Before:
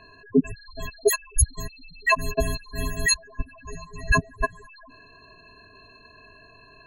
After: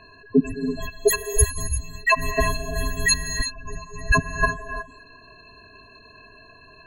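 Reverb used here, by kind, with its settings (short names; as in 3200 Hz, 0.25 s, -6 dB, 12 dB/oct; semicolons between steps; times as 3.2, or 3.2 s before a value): non-linear reverb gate 0.38 s rising, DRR 6 dB; gain +1.5 dB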